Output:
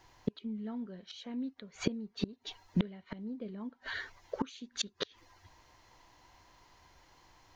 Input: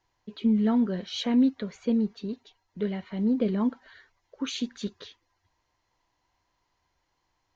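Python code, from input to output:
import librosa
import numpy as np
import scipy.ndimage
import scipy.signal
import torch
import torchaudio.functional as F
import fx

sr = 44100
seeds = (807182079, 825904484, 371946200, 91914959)

y = fx.gate_flip(x, sr, shuts_db=-31.0, range_db=-30)
y = F.gain(torch.from_numpy(y), 13.5).numpy()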